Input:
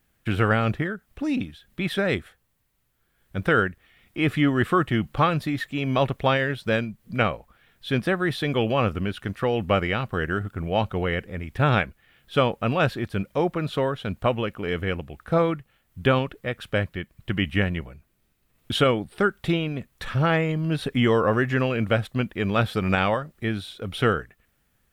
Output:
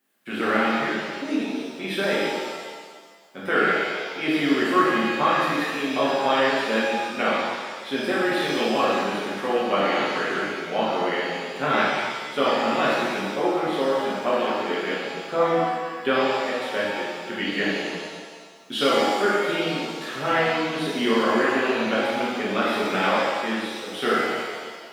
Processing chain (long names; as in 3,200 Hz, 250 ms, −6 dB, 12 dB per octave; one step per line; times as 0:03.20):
high-pass filter 230 Hz 24 dB per octave
reverb with rising layers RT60 1.6 s, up +7 semitones, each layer −8 dB, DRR −8 dB
level −6.5 dB